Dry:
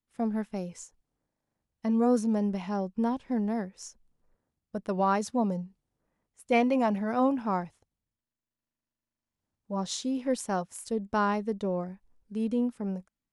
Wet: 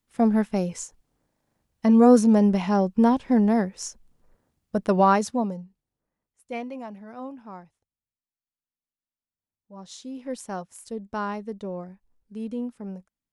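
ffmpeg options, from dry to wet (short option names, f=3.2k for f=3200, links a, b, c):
-af "volume=18.5dB,afade=t=out:st=4.9:d=0.66:silence=0.237137,afade=t=out:st=5.56:d=1.33:silence=0.354813,afade=t=in:st=9.74:d=0.71:silence=0.354813"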